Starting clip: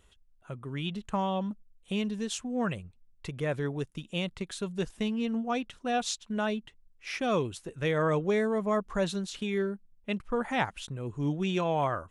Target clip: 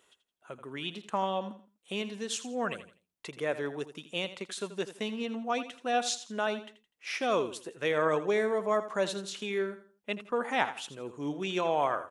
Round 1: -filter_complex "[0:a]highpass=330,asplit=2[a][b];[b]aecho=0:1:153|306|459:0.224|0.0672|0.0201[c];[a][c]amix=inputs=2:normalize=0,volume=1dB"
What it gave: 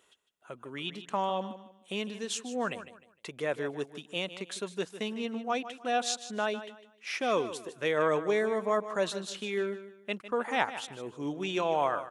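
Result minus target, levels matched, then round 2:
echo 70 ms late
-filter_complex "[0:a]highpass=330,asplit=2[a][b];[b]aecho=0:1:83|166|249:0.224|0.0672|0.0201[c];[a][c]amix=inputs=2:normalize=0,volume=1dB"

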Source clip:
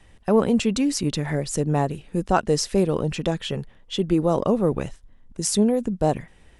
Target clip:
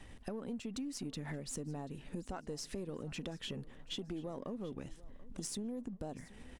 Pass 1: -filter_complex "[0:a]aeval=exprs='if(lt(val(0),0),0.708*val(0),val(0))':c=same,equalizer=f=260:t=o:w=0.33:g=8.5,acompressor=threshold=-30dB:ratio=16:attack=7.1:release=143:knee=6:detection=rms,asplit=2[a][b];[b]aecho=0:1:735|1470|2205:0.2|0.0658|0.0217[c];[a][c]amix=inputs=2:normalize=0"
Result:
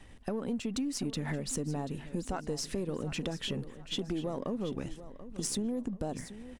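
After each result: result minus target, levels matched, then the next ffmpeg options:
compressor: peak gain reduction -7.5 dB; echo-to-direct +6 dB
-filter_complex "[0:a]aeval=exprs='if(lt(val(0),0),0.708*val(0),val(0))':c=same,equalizer=f=260:t=o:w=0.33:g=8.5,acompressor=threshold=-38dB:ratio=16:attack=7.1:release=143:knee=6:detection=rms,asplit=2[a][b];[b]aecho=0:1:735|1470|2205:0.2|0.0658|0.0217[c];[a][c]amix=inputs=2:normalize=0"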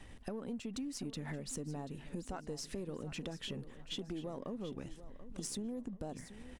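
echo-to-direct +6 dB
-filter_complex "[0:a]aeval=exprs='if(lt(val(0),0),0.708*val(0),val(0))':c=same,equalizer=f=260:t=o:w=0.33:g=8.5,acompressor=threshold=-38dB:ratio=16:attack=7.1:release=143:knee=6:detection=rms,asplit=2[a][b];[b]aecho=0:1:735|1470|2205:0.1|0.033|0.0109[c];[a][c]amix=inputs=2:normalize=0"

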